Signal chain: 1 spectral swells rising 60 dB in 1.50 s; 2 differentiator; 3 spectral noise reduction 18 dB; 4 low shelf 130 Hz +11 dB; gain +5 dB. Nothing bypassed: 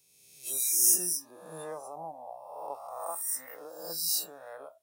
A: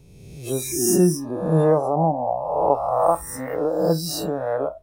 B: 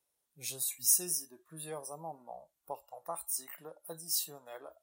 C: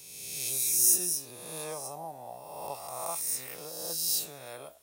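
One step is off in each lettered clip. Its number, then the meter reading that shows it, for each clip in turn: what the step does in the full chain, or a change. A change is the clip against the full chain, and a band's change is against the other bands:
2, 8 kHz band -21.5 dB; 1, 125 Hz band +6.5 dB; 3, 125 Hz band +5.0 dB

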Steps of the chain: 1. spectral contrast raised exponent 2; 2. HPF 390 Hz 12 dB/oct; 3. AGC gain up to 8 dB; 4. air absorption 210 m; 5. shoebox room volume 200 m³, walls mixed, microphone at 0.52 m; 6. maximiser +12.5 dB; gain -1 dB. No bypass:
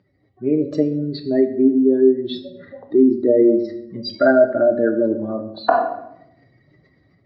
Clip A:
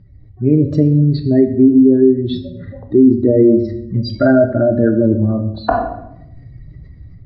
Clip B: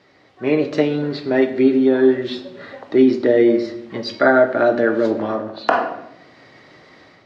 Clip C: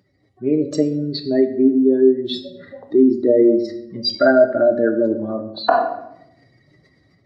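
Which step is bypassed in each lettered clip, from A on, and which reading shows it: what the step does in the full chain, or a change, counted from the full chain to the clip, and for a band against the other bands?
2, 125 Hz band +18.0 dB; 1, 2 kHz band +5.5 dB; 4, 4 kHz band +7.0 dB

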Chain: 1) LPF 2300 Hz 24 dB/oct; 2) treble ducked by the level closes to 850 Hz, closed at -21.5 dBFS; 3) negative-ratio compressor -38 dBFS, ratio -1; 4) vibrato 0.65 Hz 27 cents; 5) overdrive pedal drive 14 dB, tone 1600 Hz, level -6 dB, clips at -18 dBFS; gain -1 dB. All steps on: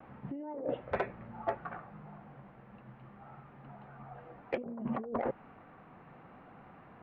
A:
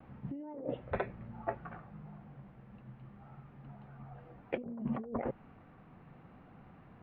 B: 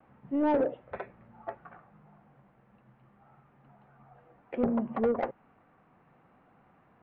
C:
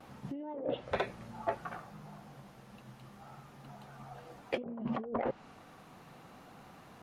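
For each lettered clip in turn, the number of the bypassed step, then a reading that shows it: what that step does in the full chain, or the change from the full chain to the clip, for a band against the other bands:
5, crest factor change +2.5 dB; 3, 250 Hz band +7.5 dB; 1, 4 kHz band +10.0 dB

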